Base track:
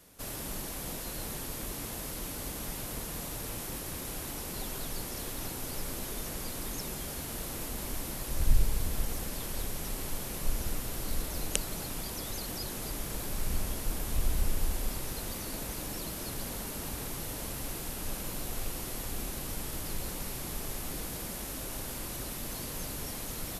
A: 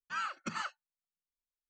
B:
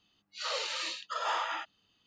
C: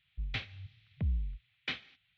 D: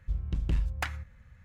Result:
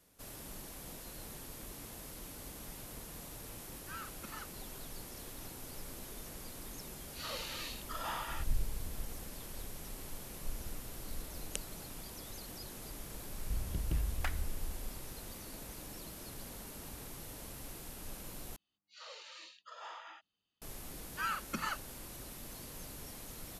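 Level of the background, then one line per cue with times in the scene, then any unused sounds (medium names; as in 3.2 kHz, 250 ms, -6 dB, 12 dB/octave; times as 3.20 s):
base track -9.5 dB
3.77 s: add A -10.5 dB
6.79 s: add B -8 dB
13.42 s: add D -6.5 dB
18.56 s: replace with B -16 dB
21.07 s: add A
not used: C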